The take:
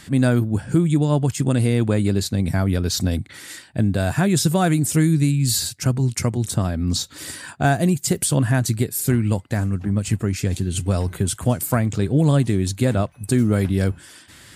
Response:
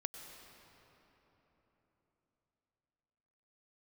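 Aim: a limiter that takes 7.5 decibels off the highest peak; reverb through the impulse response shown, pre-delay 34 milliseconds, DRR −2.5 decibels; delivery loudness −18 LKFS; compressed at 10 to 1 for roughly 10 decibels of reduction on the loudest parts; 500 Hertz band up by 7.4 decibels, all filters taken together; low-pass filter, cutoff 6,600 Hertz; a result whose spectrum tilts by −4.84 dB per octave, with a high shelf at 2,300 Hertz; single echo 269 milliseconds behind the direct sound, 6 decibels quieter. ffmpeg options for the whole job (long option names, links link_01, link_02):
-filter_complex "[0:a]lowpass=6600,equalizer=frequency=500:width_type=o:gain=9,highshelf=frequency=2300:gain=9,acompressor=threshold=-20dB:ratio=10,alimiter=limit=-16dB:level=0:latency=1,aecho=1:1:269:0.501,asplit=2[link_01][link_02];[1:a]atrim=start_sample=2205,adelay=34[link_03];[link_02][link_03]afir=irnorm=-1:irlink=0,volume=4dB[link_04];[link_01][link_04]amix=inputs=2:normalize=0,volume=3dB"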